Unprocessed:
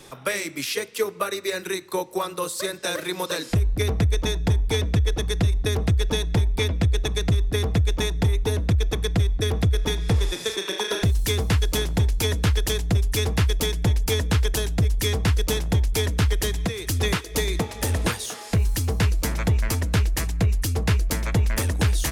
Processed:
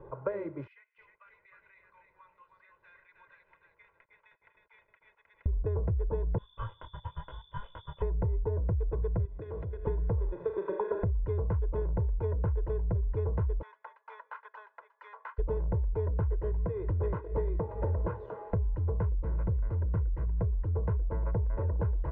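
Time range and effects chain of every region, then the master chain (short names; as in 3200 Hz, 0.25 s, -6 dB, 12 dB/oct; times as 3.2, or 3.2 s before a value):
0.67–5.46 ladder high-pass 2000 Hz, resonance 60% + lo-fi delay 0.312 s, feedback 35%, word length 9-bit, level -4 dB
6.38–8.02 inverted band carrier 3500 Hz + detuned doubles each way 30 cents
9.25–9.87 weighting filter D + compressor, threshold -31 dBFS + de-hum 71.08 Hz, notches 14
13.61–15.38 HPF 1100 Hz 24 dB/oct + whine 1700 Hz -59 dBFS
16.27–17.49 doubler 19 ms -14 dB + Doppler distortion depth 0.18 ms
19.12–20.37 bell 780 Hz -7.5 dB 1.7 oct + Doppler distortion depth 0.52 ms
whole clip: LPF 1100 Hz 24 dB/oct; comb 2 ms, depth 74%; compressor, threshold -25 dBFS; gain -2.5 dB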